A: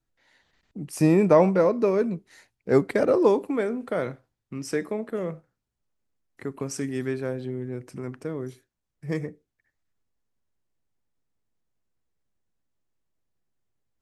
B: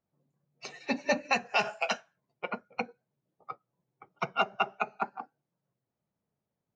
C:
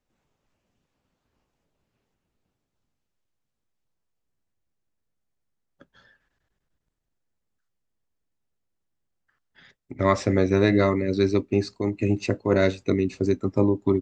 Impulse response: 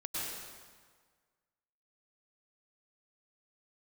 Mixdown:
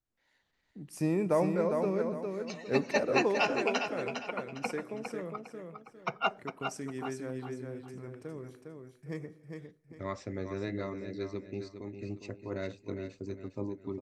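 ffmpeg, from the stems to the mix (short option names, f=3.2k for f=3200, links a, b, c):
-filter_complex "[0:a]volume=-11dB,asplit=3[a][b][c];[b]volume=-21.5dB[d];[c]volume=-4.5dB[e];[1:a]adelay=1850,volume=-2dB,asplit=3[f][g][h];[f]atrim=end=6.42,asetpts=PTS-STARTPTS,afade=t=out:st=6.416:d=0.004:c=hsin[i];[g]atrim=start=6.42:end=6.99,asetpts=PTS-STARTPTS,volume=0[j];[h]atrim=start=6.99,asetpts=PTS-STARTPTS,afade=t=in:d=0.004:c=hsin[k];[i][j][k]concat=n=3:v=0:a=1,asplit=2[l][m];[m]volume=-7dB[n];[2:a]volume=-17dB,asplit=3[o][p][q];[p]volume=-9dB[r];[q]apad=whole_len=379484[s];[l][s]sidechaincompress=threshold=-45dB:ratio=3:attack=6.3:release=312[t];[3:a]atrim=start_sample=2205[u];[d][u]afir=irnorm=-1:irlink=0[v];[e][n][r]amix=inputs=3:normalize=0,aecho=0:1:406|812|1218|1624|2030:1|0.32|0.102|0.0328|0.0105[w];[a][t][o][v][w]amix=inputs=5:normalize=0"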